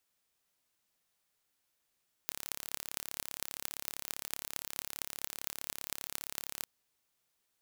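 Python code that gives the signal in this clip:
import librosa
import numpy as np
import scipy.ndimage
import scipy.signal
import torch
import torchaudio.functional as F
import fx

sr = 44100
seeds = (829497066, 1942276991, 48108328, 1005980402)

y = fx.impulse_train(sr, length_s=4.36, per_s=35.2, accent_every=8, level_db=-7.0)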